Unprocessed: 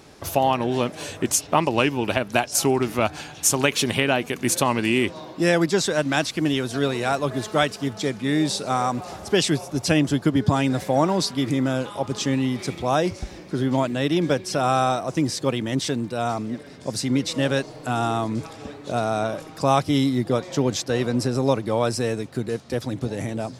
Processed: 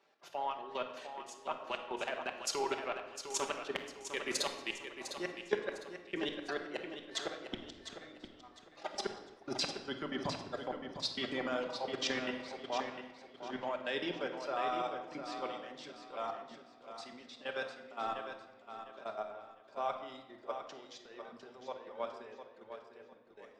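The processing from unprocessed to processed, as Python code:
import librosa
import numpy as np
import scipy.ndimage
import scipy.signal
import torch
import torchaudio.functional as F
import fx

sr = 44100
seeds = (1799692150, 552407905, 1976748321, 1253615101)

p1 = fx.doppler_pass(x, sr, speed_mps=13, closest_m=3.6, pass_at_s=8.01)
p2 = scipy.signal.sosfilt(scipy.signal.butter(2, 520.0, 'highpass', fs=sr, output='sos'), p1)
p3 = fx.dereverb_blind(p2, sr, rt60_s=0.77)
p4 = scipy.signal.sosfilt(scipy.signal.butter(2, 3600.0, 'lowpass', fs=sr, output='sos'), p3)
p5 = fx.transient(p4, sr, attack_db=-8, sustain_db=-12)
p6 = fx.rider(p5, sr, range_db=5, speed_s=2.0)
p7 = p5 + (p6 * 10.0 ** (-0.5 / 20.0))
p8 = fx.gate_flip(p7, sr, shuts_db=-30.0, range_db=-38)
p9 = fx.level_steps(p8, sr, step_db=13)
p10 = p9 + fx.echo_feedback(p9, sr, ms=704, feedback_pct=38, wet_db=-7.0, dry=0)
p11 = fx.room_shoebox(p10, sr, seeds[0], volume_m3=1700.0, walls='mixed', distance_m=1.2)
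p12 = fx.band_widen(p11, sr, depth_pct=40)
y = p12 * 10.0 ** (15.0 / 20.0)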